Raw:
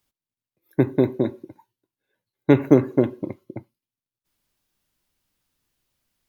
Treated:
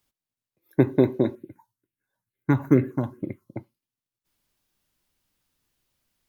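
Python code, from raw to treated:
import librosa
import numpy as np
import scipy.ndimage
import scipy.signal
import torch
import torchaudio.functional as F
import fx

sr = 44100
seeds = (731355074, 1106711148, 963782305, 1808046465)

y = fx.phaser_stages(x, sr, stages=4, low_hz=380.0, high_hz=1000.0, hz=2.2, feedback_pct=25, at=(1.35, 3.55))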